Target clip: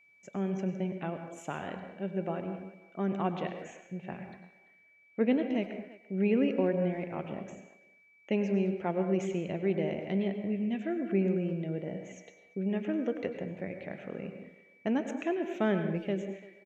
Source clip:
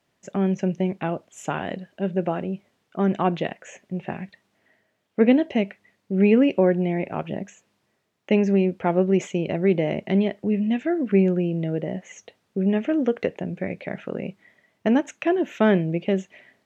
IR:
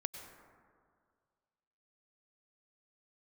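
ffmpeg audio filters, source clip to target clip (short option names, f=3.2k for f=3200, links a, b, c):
-filter_complex "[0:a]asplit=2[a][b];[b]adelay=340,highpass=300,lowpass=3.4k,asoftclip=type=hard:threshold=-14.5dB,volume=-18dB[c];[a][c]amix=inputs=2:normalize=0[d];[1:a]atrim=start_sample=2205,afade=t=out:st=0.3:d=0.01,atrim=end_sample=13671[e];[d][e]afir=irnorm=-1:irlink=0,aeval=exprs='val(0)+0.00251*sin(2*PI*2300*n/s)':c=same,volume=-8.5dB"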